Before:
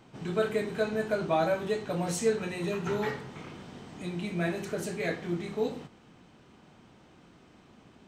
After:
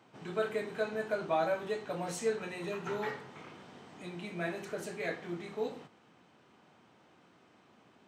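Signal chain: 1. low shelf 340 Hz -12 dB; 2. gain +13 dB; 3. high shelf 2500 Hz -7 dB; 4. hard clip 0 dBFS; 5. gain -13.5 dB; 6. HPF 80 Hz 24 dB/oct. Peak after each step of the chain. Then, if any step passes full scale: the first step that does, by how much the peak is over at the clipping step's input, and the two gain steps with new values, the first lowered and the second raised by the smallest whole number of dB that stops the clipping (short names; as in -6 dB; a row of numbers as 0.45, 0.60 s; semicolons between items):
-18.0, -5.0, -5.5, -5.5, -19.0, -18.5 dBFS; no overload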